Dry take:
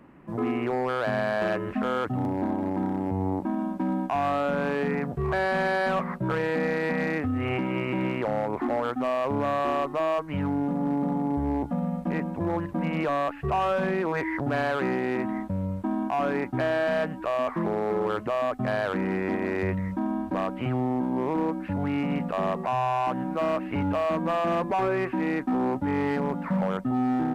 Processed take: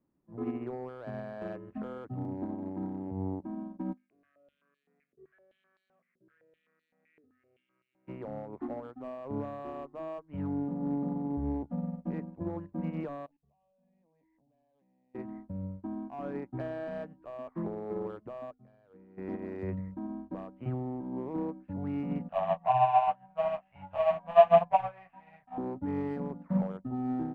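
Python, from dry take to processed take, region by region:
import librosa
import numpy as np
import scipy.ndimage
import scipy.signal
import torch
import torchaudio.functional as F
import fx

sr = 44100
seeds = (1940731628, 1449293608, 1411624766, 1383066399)

y = fx.envelope_flatten(x, sr, power=0.6, at=(3.92, 8.07), fade=0.02)
y = fx.fixed_phaser(y, sr, hz=2100.0, stages=4, at=(3.92, 8.07), fade=0.02)
y = fx.filter_held_bandpass(y, sr, hz=7.8, low_hz=410.0, high_hz=4500.0, at=(3.92, 8.07), fade=0.02)
y = fx.chain(y, sr, fx.fixed_phaser(hz=370.0, stages=6),
    fx.level_steps(step_db=23), at=(13.26, 15.15))
y = fx.chain(y, sr, fx.low_shelf(hz=190.0, db=3.0),
    fx.comb_fb(f0_hz=470.0, decay_s=0.24, harmonics='odd', damping=0.0, mix_pct=70), at=(18.51, 19.18))
y = fx.chain(y, sr, fx.curve_eq(hz=(170.0, 340.0, 700.0, 1200.0, 3000.0, 4800.0), db=(0, -27, 14, 5, 13, 1)),
    fx.detune_double(cents=17), at=(22.29, 25.58))
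y = fx.tilt_shelf(y, sr, db=7.5, hz=870.0)
y = fx.hum_notches(y, sr, base_hz=50, count=5)
y = fx.upward_expand(y, sr, threshold_db=-33.0, expansion=2.5)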